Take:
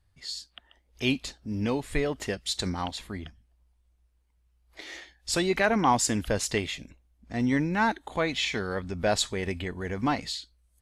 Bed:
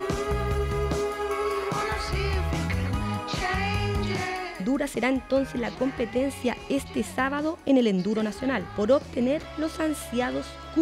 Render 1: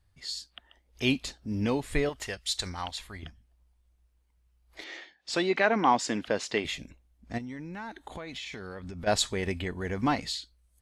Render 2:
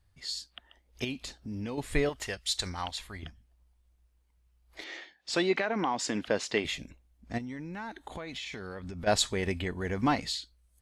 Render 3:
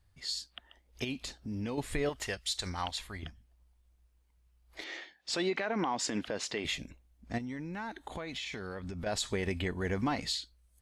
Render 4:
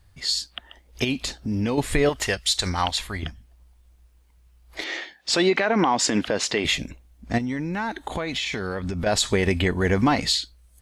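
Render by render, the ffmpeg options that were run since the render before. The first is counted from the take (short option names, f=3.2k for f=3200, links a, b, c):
-filter_complex "[0:a]asettb=1/sr,asplit=3[a][b][c];[a]atrim=end=2.094[d];[b]atrim=start=2.09:end=3.23,asetpts=PTS-STARTPTS,afade=t=in:d=0.004:c=qsin,afade=t=out:st=1.136:d=0.004:c=qsin,equalizer=f=240:w=0.56:g=-12[e];[c]atrim=start=3.226[f];[d][e]acrossfade=d=0.004:c1=hsin:c2=qsin[g];[g][f]acrossfade=d=0.004:c1=qsin:c2=hsin,asettb=1/sr,asplit=3[h][i][j];[h]atrim=end=4.844[k];[i]atrim=start=4.84:end=6.65,asetpts=PTS-STARTPTS,afade=t=in:d=0.004:c=qsin,afade=t=out:st=1.806:d=0.004:c=qsin,highpass=230,lowpass=4.5k[l];[j]atrim=start=6.646[m];[k][l]acrossfade=d=0.004:c1=hsin:c2=qsin[n];[n][m]acrossfade=d=0.004:c1=qsin:c2=hsin,asplit=3[o][p][q];[o]afade=t=out:st=7.37:d=0.02[r];[p]acompressor=threshold=-36dB:ratio=10:attack=3.2:release=140:knee=1:detection=peak,afade=t=in:st=7.37:d=0.02,afade=t=out:st=9.06:d=0.02[s];[q]afade=t=in:st=9.06:d=0.02[t];[r][s][t]amix=inputs=3:normalize=0"
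-filter_complex "[0:a]asettb=1/sr,asplit=3[a][b][c];[a]atrim=end=1.044[d];[b]atrim=start=1.04:end=1.78,asetpts=PTS-STARTPTS,afade=t=in:d=0.004:c=qsin,afade=t=out:st=0.736:d=0.004:c=qsin,acompressor=threshold=-37dB:ratio=2.5:attack=3.2:release=140:knee=1:detection=peak[e];[c]atrim=start=1.776[f];[d][e]acrossfade=d=0.004:c1=hsin:c2=qsin[g];[g][f]acrossfade=d=0.004:c1=qsin:c2=hsin,asettb=1/sr,asplit=3[h][i][j];[h]atrim=end=5.584[k];[i]atrim=start=5.58:end=6.17,asetpts=PTS-STARTPTS,afade=t=in:d=0.004:c=qsin,afade=t=out:st=0.586:d=0.004:c=qsin,acompressor=threshold=-25dB:ratio=6:attack=3.2:release=140:knee=1:detection=peak[l];[j]atrim=start=6.166[m];[k][l]acrossfade=d=0.004:c1=hsin:c2=qsin[n];[n][m]acrossfade=d=0.004:c1=qsin:c2=hsin"
-af "alimiter=limit=-22.5dB:level=0:latency=1:release=86"
-af "volume=12dB"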